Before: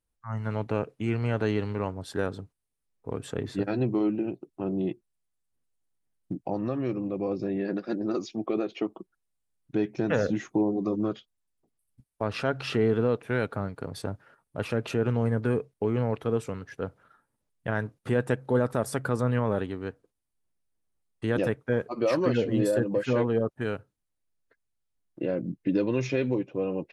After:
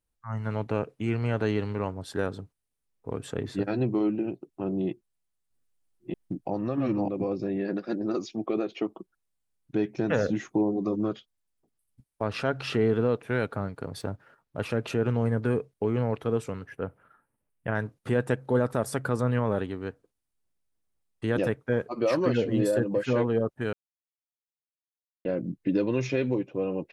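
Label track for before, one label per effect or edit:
4.870000	7.250000	reverse delay 0.635 s, level -1 dB
14.010000	14.610000	median filter over 5 samples
16.660000	17.750000	band shelf 5100 Hz -10.5 dB 1.3 oct
23.730000	25.250000	mute

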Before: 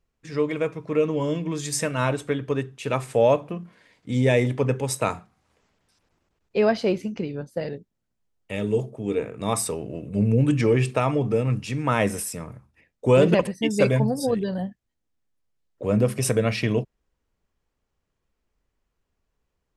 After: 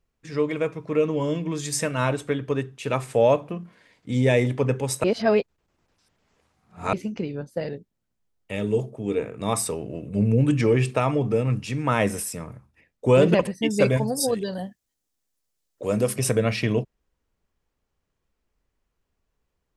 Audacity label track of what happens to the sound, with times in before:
5.040000	6.930000	reverse
13.970000	16.160000	tone controls bass -6 dB, treble +11 dB

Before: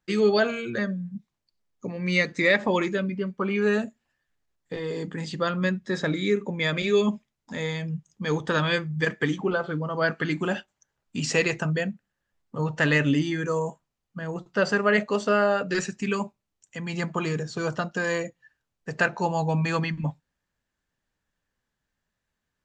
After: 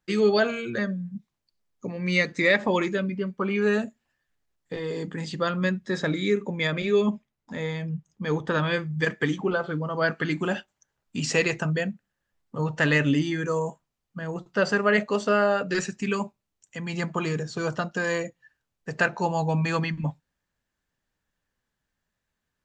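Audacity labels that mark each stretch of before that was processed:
6.670000	8.790000	high shelf 3300 Hz -9 dB

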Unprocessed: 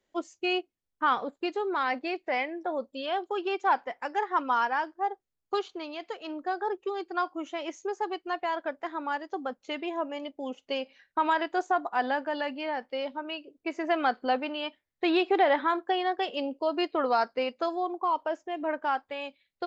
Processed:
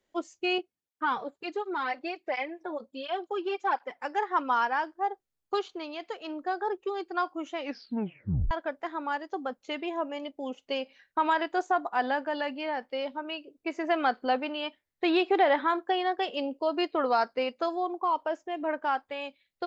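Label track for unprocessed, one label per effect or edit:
0.580000	4.040000	tape flanging out of phase nulls at 1.4 Hz, depth 4.7 ms
7.560000	7.560000	tape stop 0.95 s

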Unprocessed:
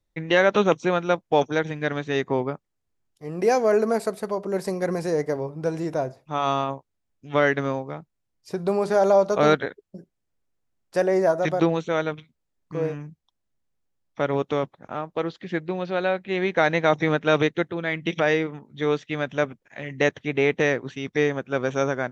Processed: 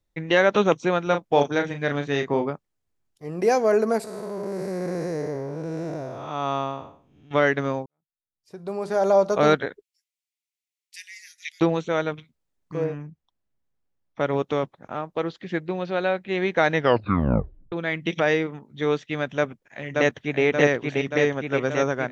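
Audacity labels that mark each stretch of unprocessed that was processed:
1.030000	2.500000	doubler 35 ms -7 dB
4.040000	7.310000	time blur width 0.3 s
7.860000	9.190000	fade in quadratic
9.820000	11.610000	steep high-pass 2000 Hz 72 dB/oct
12.840000	14.210000	LPF 2600 Hz 6 dB/oct
16.720000	16.720000	tape stop 1.00 s
19.360000	20.430000	echo throw 0.58 s, feedback 70%, level -2 dB

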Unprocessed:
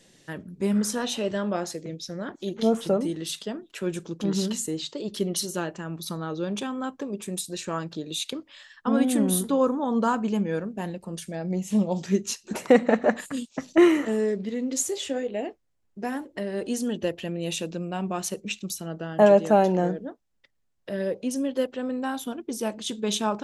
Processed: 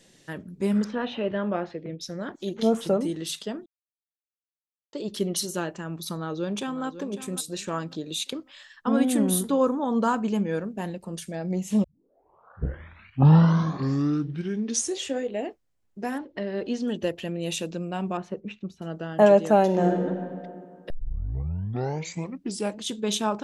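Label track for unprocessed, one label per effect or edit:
0.840000	2.010000	LPF 3000 Hz 24 dB/oct
3.660000	4.930000	mute
6.120000	6.850000	echo throw 0.55 s, feedback 30%, level -12.5 dB
11.840000	11.840000	tape start 3.29 s
16.180000	16.880000	LPF 4900 Hz 24 dB/oct
18.170000	18.820000	LPF 1500 Hz
19.650000	20.080000	reverb throw, RT60 2.2 s, DRR 1.5 dB
20.900000	20.900000	tape start 1.88 s

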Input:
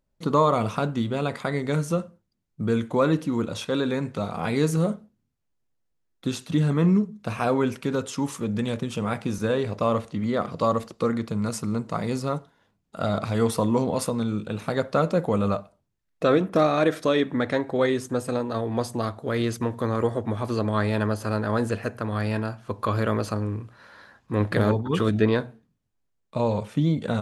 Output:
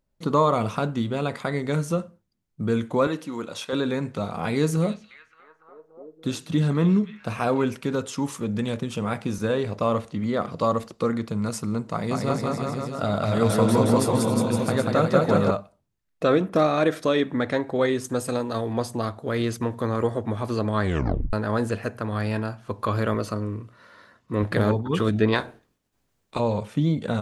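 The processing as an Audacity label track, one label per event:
3.070000	3.730000	HPF 530 Hz 6 dB/oct
4.530000	7.650000	delay with a stepping band-pass 0.288 s, band-pass from 3000 Hz, each repeat -0.7 oct, level -7.5 dB
11.910000	15.510000	bouncing-ball echo first gap 0.19 s, each gap 0.9×, echoes 5, each echo -2 dB
18.040000	18.730000	high shelf 3500 Hz +7 dB
20.820000	20.820000	tape stop 0.51 s
23.140000	24.430000	notch comb 820 Hz
25.320000	26.380000	spectral limiter ceiling under each frame's peak by 18 dB

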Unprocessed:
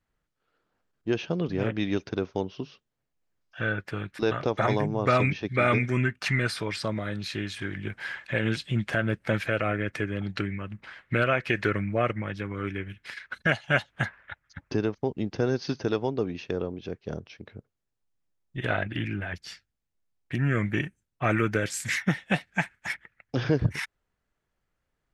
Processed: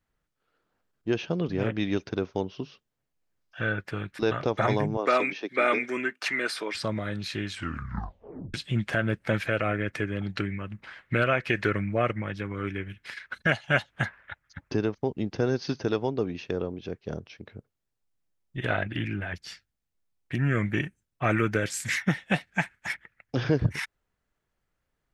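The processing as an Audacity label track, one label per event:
4.970000	6.750000	HPF 280 Hz 24 dB/oct
7.510000	7.510000	tape stop 1.03 s

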